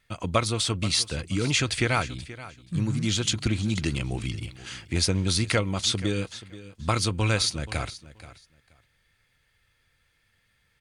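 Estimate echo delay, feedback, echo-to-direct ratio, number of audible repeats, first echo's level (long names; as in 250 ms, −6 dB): 479 ms, 18%, −16.5 dB, 2, −16.5 dB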